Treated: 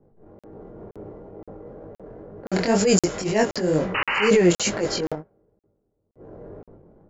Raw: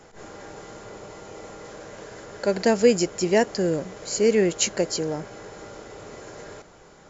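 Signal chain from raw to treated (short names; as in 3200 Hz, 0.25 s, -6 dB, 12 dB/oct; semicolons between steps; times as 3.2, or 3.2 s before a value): 5.13–6.15 gate -27 dBFS, range -30 dB; low-pass opened by the level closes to 310 Hz, open at -18 dBFS; 2.87–3.34 high shelf 6800 Hz +10.5 dB; transient shaper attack -12 dB, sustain +7 dB; AGC gain up to 7 dB; 3.94–4.29 painted sound noise 770–3000 Hz -20 dBFS; chorus 2.1 Hz, delay 19 ms, depth 4.1 ms; 0.73–1.13 flutter echo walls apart 10.8 m, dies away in 1.2 s; crackling interface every 0.52 s, samples 2048, zero, from 0.39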